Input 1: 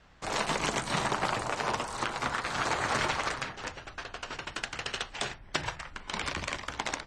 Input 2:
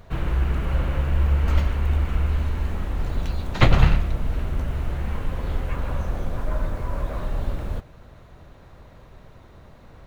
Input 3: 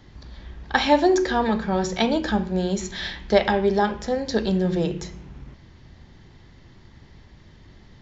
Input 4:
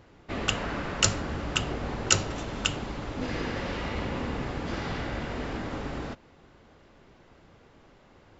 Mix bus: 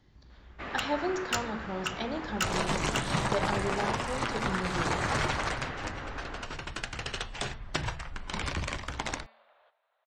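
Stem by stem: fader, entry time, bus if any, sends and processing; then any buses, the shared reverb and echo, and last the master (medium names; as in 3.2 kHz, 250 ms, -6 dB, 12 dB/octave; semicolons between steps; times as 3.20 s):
-1.5 dB, 2.20 s, no send, bass shelf 180 Hz +11.5 dB
-20.0 dB, 1.90 s, no send, elliptic band-pass 640–3700 Hz, stop band 50 dB
-13.5 dB, 0.00 s, no send, none
-13.0 dB, 0.30 s, no send, peaking EQ 1.5 kHz +12.5 dB 2.7 oct; overload inside the chain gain 8 dB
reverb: none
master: de-hum 223.8 Hz, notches 21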